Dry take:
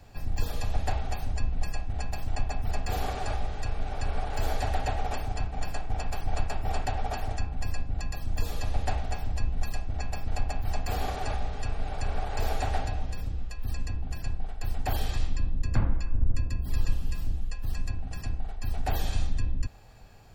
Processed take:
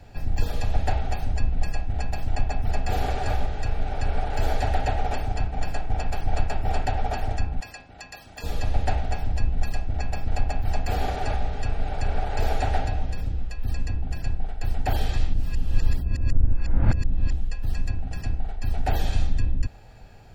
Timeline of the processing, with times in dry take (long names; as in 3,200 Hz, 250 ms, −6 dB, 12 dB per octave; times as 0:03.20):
0:02.44–0:03.08: delay throw 370 ms, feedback 20%, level −9.5 dB
0:07.60–0:08.44: high-pass filter 1,000 Hz 6 dB per octave
0:15.34–0:17.33: reverse
whole clip: high-shelf EQ 5,300 Hz −8.5 dB; notch filter 1,100 Hz, Q 5.6; level +5 dB